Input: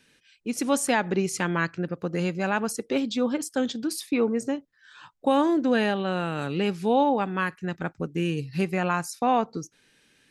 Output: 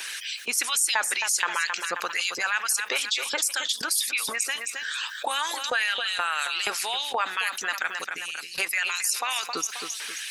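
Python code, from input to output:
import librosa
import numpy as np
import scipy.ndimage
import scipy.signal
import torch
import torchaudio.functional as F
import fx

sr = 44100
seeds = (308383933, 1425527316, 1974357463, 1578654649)

p1 = fx.high_shelf(x, sr, hz=6100.0, db=8.5)
p2 = fx.filter_lfo_highpass(p1, sr, shape='saw_up', hz=2.1, low_hz=930.0, high_hz=4200.0, q=1.1)
p3 = fx.tone_stack(p2, sr, knobs='10-0-1', at=(8.04, 8.58))
p4 = fx.hpss(p3, sr, part='harmonic', gain_db=-18)
p5 = p4 + fx.echo_feedback(p4, sr, ms=267, feedback_pct=26, wet_db=-17.5, dry=0)
y = fx.env_flatten(p5, sr, amount_pct=70)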